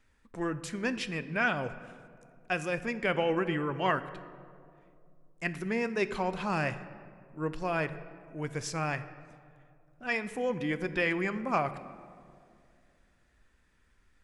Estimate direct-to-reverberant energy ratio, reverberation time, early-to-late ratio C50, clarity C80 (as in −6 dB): 11.5 dB, 2.4 s, 13.5 dB, 14.5 dB